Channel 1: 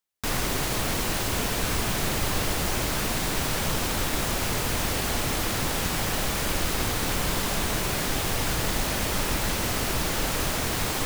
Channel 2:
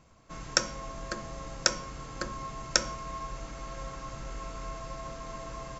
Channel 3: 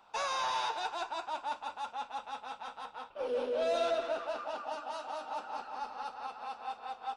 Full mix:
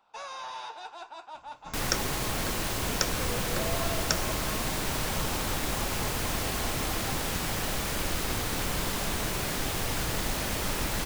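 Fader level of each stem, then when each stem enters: −4.0, −4.0, −6.0 decibels; 1.50, 1.35, 0.00 seconds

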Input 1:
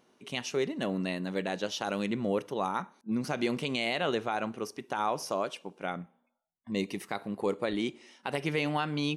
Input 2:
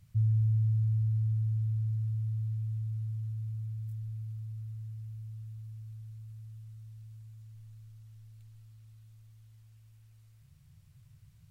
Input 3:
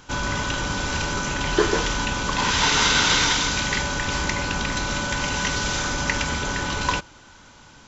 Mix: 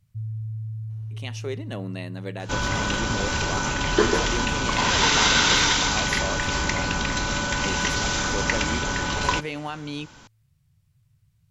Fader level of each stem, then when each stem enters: −2.0, −5.0, 0.0 decibels; 0.90, 0.00, 2.40 seconds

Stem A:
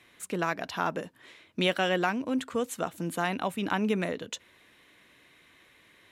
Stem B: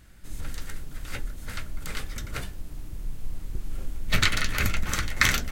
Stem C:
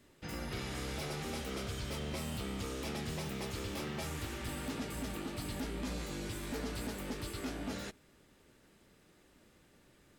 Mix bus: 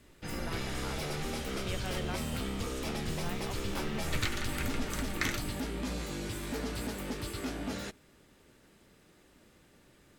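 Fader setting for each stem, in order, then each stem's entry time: −15.0, −12.0, +3.0 decibels; 0.05, 0.00, 0.00 seconds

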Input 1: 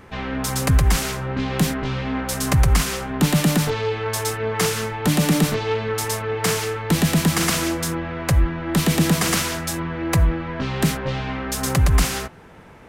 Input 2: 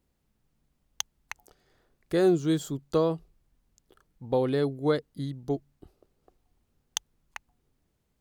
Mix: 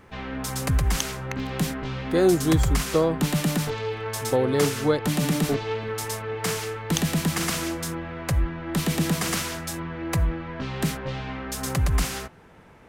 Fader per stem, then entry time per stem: −6.0, +3.0 decibels; 0.00, 0.00 seconds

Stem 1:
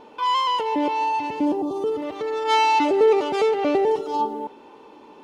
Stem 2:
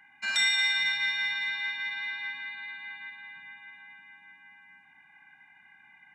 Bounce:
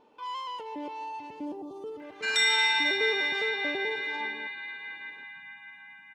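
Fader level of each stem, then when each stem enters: −15.0, +1.0 decibels; 0.00, 2.00 seconds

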